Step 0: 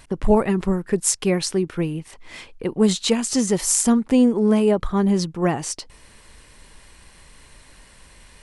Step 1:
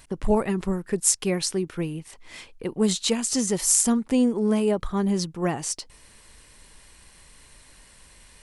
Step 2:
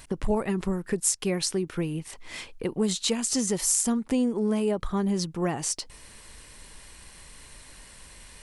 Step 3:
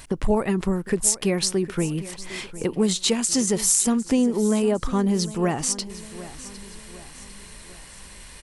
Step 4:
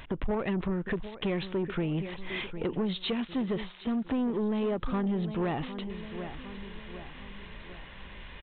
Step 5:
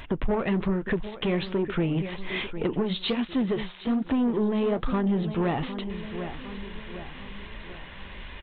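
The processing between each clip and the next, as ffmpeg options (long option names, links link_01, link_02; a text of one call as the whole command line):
ffmpeg -i in.wav -af "highshelf=frequency=4600:gain=6.5,volume=-5dB" out.wav
ffmpeg -i in.wav -af "acompressor=threshold=-31dB:ratio=2,volume=3.5dB" out.wav
ffmpeg -i in.wav -af "aecho=1:1:756|1512|2268|3024:0.15|0.0688|0.0317|0.0146,volume=4.5dB" out.wav
ffmpeg -i in.wav -af "acompressor=threshold=-22dB:ratio=5,aresample=8000,asoftclip=type=tanh:threshold=-24.5dB,aresample=44100" out.wav
ffmpeg -i in.wav -af "flanger=delay=2.9:depth=9.5:regen=-59:speed=1.2:shape=sinusoidal,volume=8.5dB" out.wav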